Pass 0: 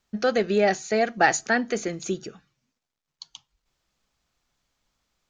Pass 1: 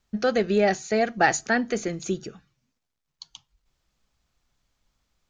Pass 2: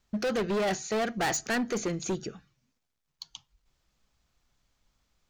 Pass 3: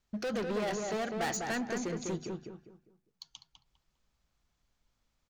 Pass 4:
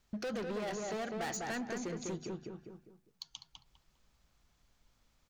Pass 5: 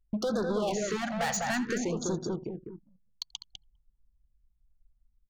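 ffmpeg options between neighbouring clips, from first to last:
-af "lowshelf=f=140:g=8.5,volume=-1dB"
-af "volume=25.5dB,asoftclip=hard,volume=-25.5dB"
-filter_complex "[0:a]asplit=2[a][b];[b]adelay=201,lowpass=f=1.8k:p=1,volume=-3dB,asplit=2[c][d];[d]adelay=201,lowpass=f=1.8k:p=1,volume=0.33,asplit=2[e][f];[f]adelay=201,lowpass=f=1.8k:p=1,volume=0.33,asplit=2[g][h];[h]adelay=201,lowpass=f=1.8k:p=1,volume=0.33[i];[a][c][e][g][i]amix=inputs=5:normalize=0,volume=-6dB"
-af "acompressor=threshold=-51dB:ratio=2,volume=6dB"
-af "aecho=1:1:84:0.168,anlmdn=0.00631,afftfilt=real='re*(1-between(b*sr/1024,310*pow(2500/310,0.5+0.5*sin(2*PI*0.57*pts/sr))/1.41,310*pow(2500/310,0.5+0.5*sin(2*PI*0.57*pts/sr))*1.41))':imag='im*(1-between(b*sr/1024,310*pow(2500/310,0.5+0.5*sin(2*PI*0.57*pts/sr))/1.41,310*pow(2500/310,0.5+0.5*sin(2*PI*0.57*pts/sr))*1.41))':win_size=1024:overlap=0.75,volume=8.5dB"

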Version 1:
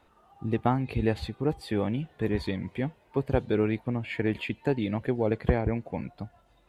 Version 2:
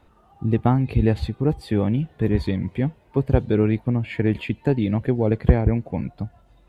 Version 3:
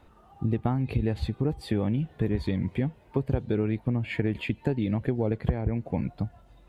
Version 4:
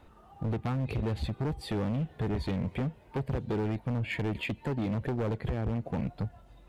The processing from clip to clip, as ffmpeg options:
-af "lowshelf=f=290:g=10,volume=1.5dB"
-af "acompressor=threshold=-23dB:ratio=5"
-af "asoftclip=type=hard:threshold=-27dB"

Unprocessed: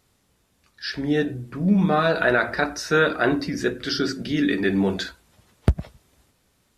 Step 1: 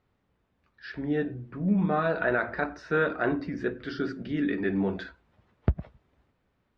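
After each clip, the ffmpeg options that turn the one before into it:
-af "lowpass=2.1k,volume=-6dB"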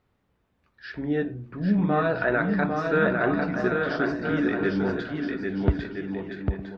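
-af "aecho=1:1:800|1320|1658|1878|2021:0.631|0.398|0.251|0.158|0.1,volume=2dB"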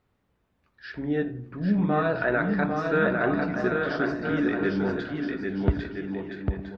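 -filter_complex "[0:a]asplit=2[a][b];[b]adelay=86,lowpass=f=2k:p=1,volume=-17dB,asplit=2[c][d];[d]adelay=86,lowpass=f=2k:p=1,volume=0.49,asplit=2[e][f];[f]adelay=86,lowpass=f=2k:p=1,volume=0.49,asplit=2[g][h];[h]adelay=86,lowpass=f=2k:p=1,volume=0.49[i];[a][c][e][g][i]amix=inputs=5:normalize=0,volume=-1dB"

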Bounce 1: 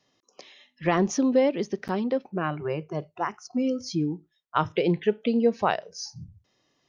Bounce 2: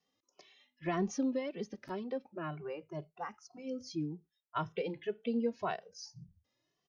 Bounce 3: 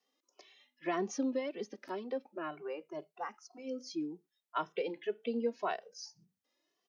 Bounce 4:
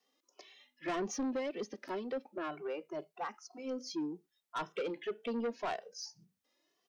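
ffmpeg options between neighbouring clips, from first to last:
-filter_complex "[0:a]asplit=2[a][b];[b]adelay=2.2,afreqshift=1.9[c];[a][c]amix=inputs=2:normalize=1,volume=-9dB"
-af "highpass=f=250:w=0.5412,highpass=f=250:w=1.3066,volume=1dB"
-af "asoftclip=type=tanh:threshold=-34dB,volume=3dB"

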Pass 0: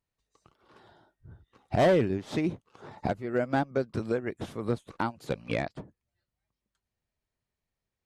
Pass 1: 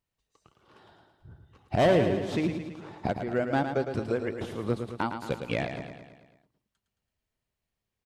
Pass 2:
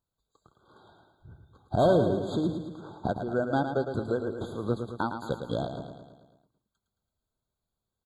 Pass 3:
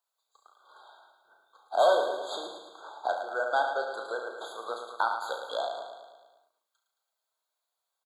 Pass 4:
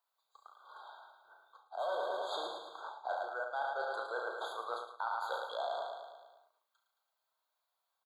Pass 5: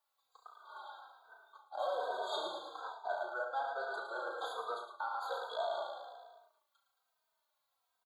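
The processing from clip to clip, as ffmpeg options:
-filter_complex "[0:a]equalizer=f=2.9k:t=o:w=0.33:g=4,asplit=2[a][b];[b]aecho=0:1:110|220|330|440|550|660|770:0.422|0.24|0.137|0.0781|0.0445|0.0254|0.0145[c];[a][c]amix=inputs=2:normalize=0"
-af "afftfilt=real='re*eq(mod(floor(b*sr/1024/1600),2),0)':imag='im*eq(mod(floor(b*sr/1024/1600),2),0)':win_size=1024:overlap=0.75"
-af "highpass=f=650:w=0.5412,highpass=f=650:w=1.3066,aecho=1:1:35|69:0.447|0.316,volume=4.5dB"
-af "equalizer=f=250:t=o:w=1:g=-11,equalizer=f=1k:t=o:w=1:g=4,equalizer=f=8k:t=o:w=1:g=-8,areverse,acompressor=threshold=-34dB:ratio=8,areverse"
-filter_complex "[0:a]alimiter=level_in=5dB:limit=-24dB:level=0:latency=1:release=475,volume=-5dB,asplit=2[a][b];[b]adelay=3,afreqshift=-1.2[c];[a][c]amix=inputs=2:normalize=1,volume=5dB"

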